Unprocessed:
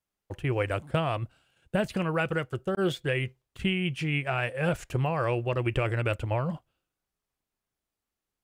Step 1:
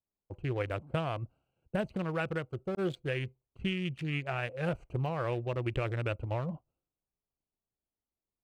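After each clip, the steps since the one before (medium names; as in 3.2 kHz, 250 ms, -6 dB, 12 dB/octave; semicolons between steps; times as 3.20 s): local Wiener filter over 25 samples; trim -5 dB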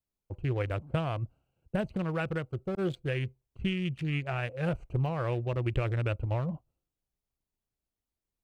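bass shelf 130 Hz +8.5 dB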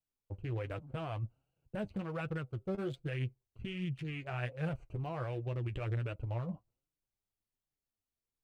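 peak limiter -23.5 dBFS, peak gain reduction 7.5 dB; flange 1.3 Hz, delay 6 ms, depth 4.6 ms, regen +36%; trim -1.5 dB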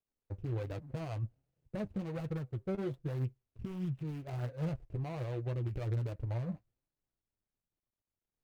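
median filter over 41 samples; trim +1.5 dB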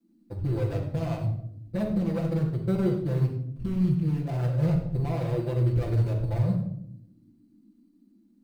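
band noise 200–310 Hz -70 dBFS; in parallel at -11.5 dB: sample-rate reducer 4.3 kHz, jitter 0%; on the sum: reverberation RT60 0.70 s, pre-delay 6 ms, DRR -6 dB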